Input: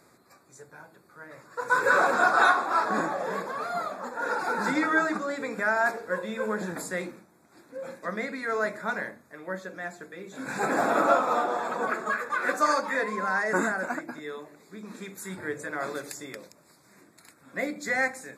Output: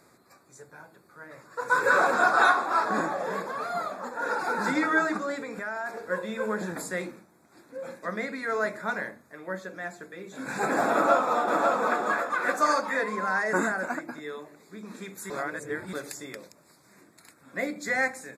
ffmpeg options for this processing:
-filter_complex "[0:a]asettb=1/sr,asplit=3[a][b][c];[a]atrim=end=5.394[d];[b]atrim=start=5.39:end=5.97,asetpts=PTS-STARTPTS,afade=t=in:d=0.004:c=qsin,afade=t=out:st=0.576:d=0.004:c=qsin,acompressor=threshold=-34dB:ratio=2.5:attack=3.2:release=140:knee=1:detection=peak[e];[c]atrim=start=5.966[f];[d][e]acrossfade=d=0.004:c1=hsin:c2=qsin[g];[g][f]acrossfade=d=0.004:c1=qsin:c2=hsin,asplit=2[h][i];[i]afade=t=in:st=10.92:d=0.01,afade=t=out:st=11.65:d=0.01,aecho=0:1:550|1100|1650|2200|2750:0.707946|0.247781|0.0867234|0.0303532|0.0106236[j];[h][j]amix=inputs=2:normalize=0,asplit=3[k][l][m];[k]atrim=end=15.302[n];[l]atrim=start=15.298:end=15.932,asetpts=PTS-STARTPTS,areverse[o];[m]atrim=start=15.928[p];[n][o]acrossfade=d=0.004:c1=hsin:c2=hsin[q];[q][p]acrossfade=d=0.004:c1=hsin:c2=hsin"

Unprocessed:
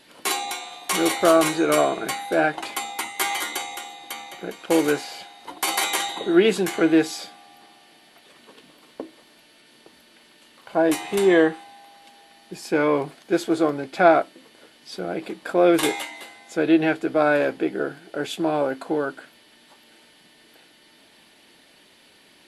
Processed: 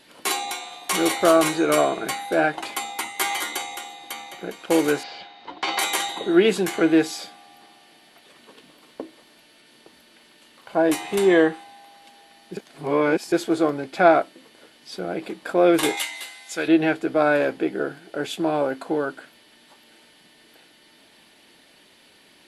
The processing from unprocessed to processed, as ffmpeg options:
-filter_complex "[0:a]asettb=1/sr,asplit=3[a][b][c];[a]atrim=end=5.034[d];[b]atrim=start=5.03:end=5.79,asetpts=PTS-STARTPTS,afade=t=in:d=0.004:c=qsin,afade=t=out:st=0.756:d=0.004:c=qsin,lowpass=f=4.7k:w=0.5412,lowpass=f=4.7k:w=1.3066[e];[c]atrim=start=5.786[f];[d][e]acrossfade=d=0.004:c1=hsin:c2=qsin[g];[g][f]acrossfade=d=0.004:c1=qsin:c2=hsin,asettb=1/sr,asplit=3[h][i][j];[h]atrim=end=15.974[k];[i]atrim=start=15.97:end=16.68,asetpts=PTS-STARTPTS,afade=t=in:d=0.004:c=qsin,afade=t=out:st=0.706:d=0.004:c=qsin,tiltshelf=f=1.2k:g=-8.5[l];[j]atrim=start=16.676[m];[k][l]acrossfade=d=0.004:c1=hsin:c2=qsin[n];[n][m]acrossfade=d=0.004:c1=qsin:c2=hsin,asplit=3[o][p][q];[o]atrim=end=12.572[r];[p]atrim=start=12.568:end=13.322,asetpts=PTS-STARTPTS,areverse[s];[q]atrim=start=13.318[t];[r][s]acrossfade=d=0.004:c1=hsin:c2=hsin[u];[u][t]acrossfade=d=0.004:c1=hsin:c2=hsin"

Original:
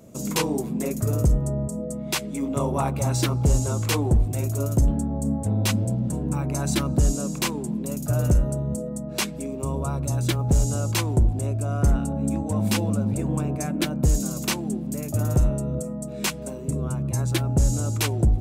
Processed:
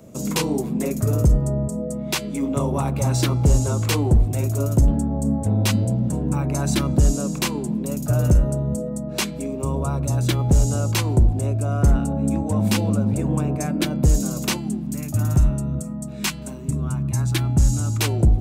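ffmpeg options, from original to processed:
-filter_complex "[0:a]asettb=1/sr,asplit=3[a][b][c];[a]atrim=end=14.574[d];[b]atrim=start=14.57:end=18,asetpts=PTS-STARTPTS,afade=t=in:d=0.004:c=qsin,afade=t=out:st=3.426:d=0.004:c=qsin,equalizer=f=500:t=o:w=0.73:g=-14[e];[c]atrim=start=17.996[f];[d][e]acrossfade=d=0.004:c1=hsin:c2=qsin[g];[g][f]acrossfade=d=0.004:c1=qsin:c2=hsin,equalizer=f=11k:t=o:w=1.7:g=-3,acrossover=split=350|3000[h][i][j];[i]acompressor=threshold=-28dB:ratio=6[k];[h][k][j]amix=inputs=3:normalize=0,bandreject=f=337.5:t=h:w=4,bandreject=f=675:t=h:w=4,bandreject=f=1.0125k:t=h:w=4,bandreject=f=1.35k:t=h:w=4,bandreject=f=1.6875k:t=h:w=4,bandreject=f=2.025k:t=h:w=4,bandreject=f=2.3625k:t=h:w=4,bandreject=f=2.7k:t=h:w=4,bandreject=f=3.0375k:t=h:w=4,bandreject=f=3.375k:t=h:w=4,bandreject=f=3.7125k:t=h:w=4,bandreject=f=4.05k:t=h:w=4,bandreject=f=4.3875k:t=h:w=4,bandreject=f=4.725k:t=h:w=4,volume=3.5dB"

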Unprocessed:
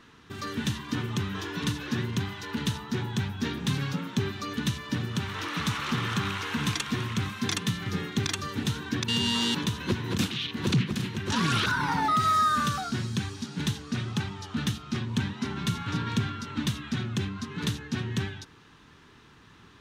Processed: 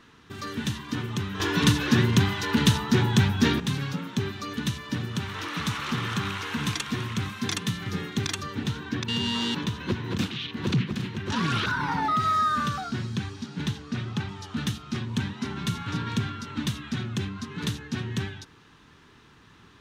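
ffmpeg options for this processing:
-filter_complex "[0:a]asettb=1/sr,asplit=3[a][b][c];[a]atrim=end=8.434[d];[b]atrim=start=8.43:end=14.29,asetpts=PTS-STARTPTS,afade=t=in:d=0.004:c=qsin,afade=t=out:st=5.856:d=0.004:c=qsin,equalizer=f=11k:w=0.53:g=-9.5[e];[c]atrim=start=14.286[f];[d][e]acrossfade=d=0.004:c1=hsin:c2=qsin[g];[g][f]acrossfade=d=0.004:c1=qsin:c2=hsin,asplit=3[h][i][j];[h]atrim=end=1.402[k];[i]atrim=start=1.398:end=3.602,asetpts=PTS-STARTPTS,volume=9dB[l];[j]atrim=start=3.598[m];[k][l]acrossfade=d=0.004:c1=hsin:c2=hsin[n];[n][m]acrossfade=d=0.004:c1=hsin:c2=hsin"

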